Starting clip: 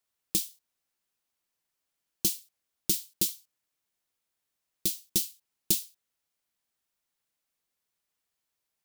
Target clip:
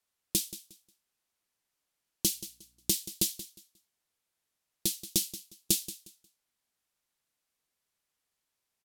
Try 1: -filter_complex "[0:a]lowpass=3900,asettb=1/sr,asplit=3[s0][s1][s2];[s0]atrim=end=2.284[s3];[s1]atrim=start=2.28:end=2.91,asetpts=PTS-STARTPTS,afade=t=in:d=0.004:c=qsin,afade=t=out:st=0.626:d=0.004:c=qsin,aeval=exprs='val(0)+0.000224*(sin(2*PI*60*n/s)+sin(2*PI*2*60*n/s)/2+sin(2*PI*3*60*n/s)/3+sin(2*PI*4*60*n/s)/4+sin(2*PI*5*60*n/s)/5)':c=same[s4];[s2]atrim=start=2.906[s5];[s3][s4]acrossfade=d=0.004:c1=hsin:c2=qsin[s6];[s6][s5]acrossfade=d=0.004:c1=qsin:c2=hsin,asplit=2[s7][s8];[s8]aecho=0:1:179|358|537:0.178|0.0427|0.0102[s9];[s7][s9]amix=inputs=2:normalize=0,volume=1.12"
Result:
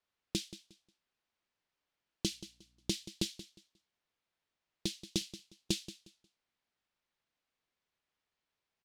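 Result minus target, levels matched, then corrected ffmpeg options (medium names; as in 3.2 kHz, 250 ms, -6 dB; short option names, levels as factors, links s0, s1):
8 kHz band -4.5 dB
-filter_complex "[0:a]lowpass=14000,asettb=1/sr,asplit=3[s0][s1][s2];[s0]atrim=end=2.284[s3];[s1]atrim=start=2.28:end=2.91,asetpts=PTS-STARTPTS,afade=t=in:d=0.004:c=qsin,afade=t=out:st=0.626:d=0.004:c=qsin,aeval=exprs='val(0)+0.000224*(sin(2*PI*60*n/s)+sin(2*PI*2*60*n/s)/2+sin(2*PI*3*60*n/s)/3+sin(2*PI*4*60*n/s)/4+sin(2*PI*5*60*n/s)/5)':c=same[s4];[s2]atrim=start=2.906[s5];[s3][s4]acrossfade=d=0.004:c1=hsin:c2=qsin[s6];[s6][s5]acrossfade=d=0.004:c1=qsin:c2=hsin,asplit=2[s7][s8];[s8]aecho=0:1:179|358|537:0.178|0.0427|0.0102[s9];[s7][s9]amix=inputs=2:normalize=0,volume=1.12"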